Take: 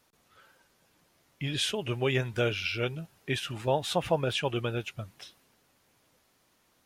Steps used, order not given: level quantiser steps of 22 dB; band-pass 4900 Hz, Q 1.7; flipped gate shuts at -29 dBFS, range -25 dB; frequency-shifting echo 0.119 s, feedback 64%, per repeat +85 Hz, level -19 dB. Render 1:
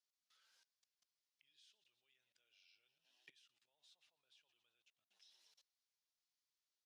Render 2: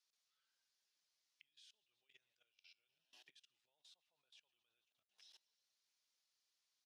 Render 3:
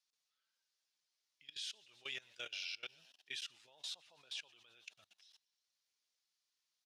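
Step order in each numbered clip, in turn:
frequency-shifting echo > flipped gate > level quantiser > band-pass; frequency-shifting echo > flipped gate > band-pass > level quantiser; band-pass > frequency-shifting echo > level quantiser > flipped gate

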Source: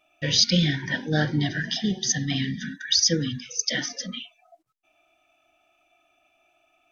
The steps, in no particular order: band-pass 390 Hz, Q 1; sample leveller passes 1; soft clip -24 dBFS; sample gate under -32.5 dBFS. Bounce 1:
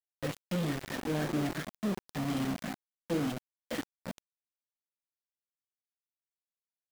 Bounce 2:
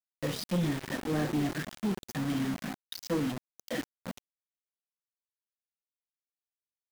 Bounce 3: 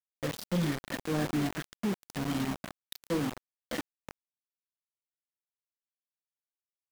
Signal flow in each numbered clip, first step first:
soft clip > band-pass > sample leveller > sample gate; band-pass > soft clip > sample leveller > sample gate; band-pass > soft clip > sample gate > sample leveller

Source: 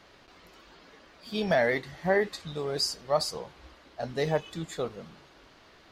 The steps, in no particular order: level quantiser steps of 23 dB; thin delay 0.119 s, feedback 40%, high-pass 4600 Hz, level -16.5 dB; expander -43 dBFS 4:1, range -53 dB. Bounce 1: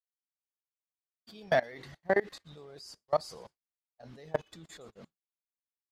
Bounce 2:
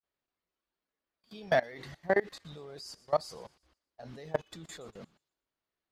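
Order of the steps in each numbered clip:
level quantiser > thin delay > expander; expander > level quantiser > thin delay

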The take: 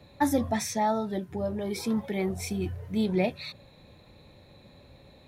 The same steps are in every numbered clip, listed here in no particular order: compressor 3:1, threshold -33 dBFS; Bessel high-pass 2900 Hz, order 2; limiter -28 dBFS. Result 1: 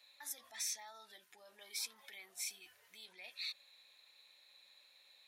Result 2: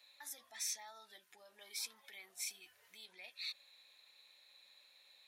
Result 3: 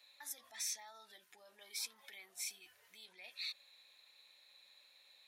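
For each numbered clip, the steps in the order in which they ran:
limiter > Bessel high-pass > compressor; compressor > limiter > Bessel high-pass; limiter > compressor > Bessel high-pass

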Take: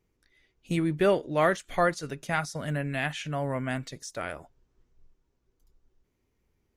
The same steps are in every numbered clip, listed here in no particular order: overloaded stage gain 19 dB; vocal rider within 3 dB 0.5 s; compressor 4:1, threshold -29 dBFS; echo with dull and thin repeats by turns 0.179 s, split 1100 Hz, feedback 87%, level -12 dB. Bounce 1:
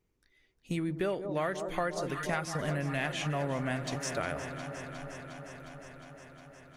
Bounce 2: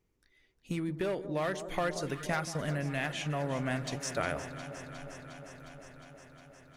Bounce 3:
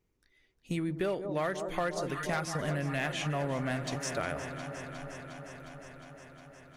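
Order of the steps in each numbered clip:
echo with dull and thin repeats by turns > vocal rider > compressor > overloaded stage; overloaded stage > compressor > echo with dull and thin repeats by turns > vocal rider; echo with dull and thin repeats by turns > vocal rider > overloaded stage > compressor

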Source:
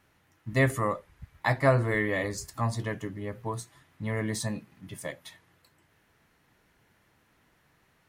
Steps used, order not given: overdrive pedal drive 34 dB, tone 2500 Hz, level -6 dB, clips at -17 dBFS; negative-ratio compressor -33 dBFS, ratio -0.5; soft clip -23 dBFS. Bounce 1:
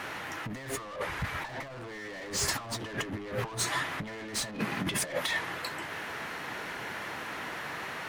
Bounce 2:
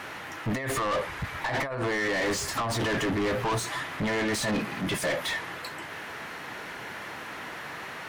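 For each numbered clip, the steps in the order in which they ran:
overdrive pedal > soft clip > negative-ratio compressor; negative-ratio compressor > overdrive pedal > soft clip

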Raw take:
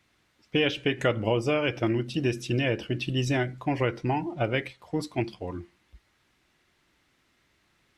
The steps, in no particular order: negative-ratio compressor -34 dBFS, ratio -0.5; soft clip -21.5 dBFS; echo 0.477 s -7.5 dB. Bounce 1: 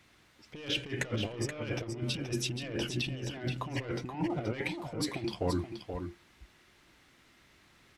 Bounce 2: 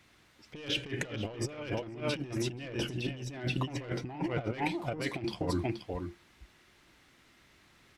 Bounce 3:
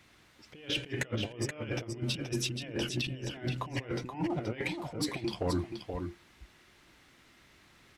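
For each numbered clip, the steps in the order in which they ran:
soft clip > negative-ratio compressor > echo; echo > soft clip > negative-ratio compressor; negative-ratio compressor > echo > soft clip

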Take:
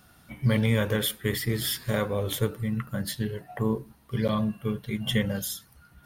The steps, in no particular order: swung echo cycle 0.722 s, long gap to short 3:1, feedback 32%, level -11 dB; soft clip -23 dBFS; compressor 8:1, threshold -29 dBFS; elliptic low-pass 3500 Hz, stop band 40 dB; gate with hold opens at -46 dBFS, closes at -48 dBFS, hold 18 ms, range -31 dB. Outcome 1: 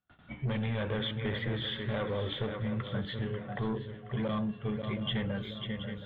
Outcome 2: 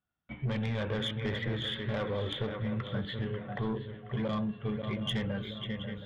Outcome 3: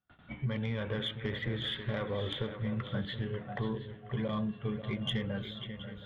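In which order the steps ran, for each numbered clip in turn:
gate with hold > swung echo > soft clip > elliptic low-pass > compressor; elliptic low-pass > gate with hold > swung echo > soft clip > compressor; gate with hold > elliptic low-pass > compressor > swung echo > soft clip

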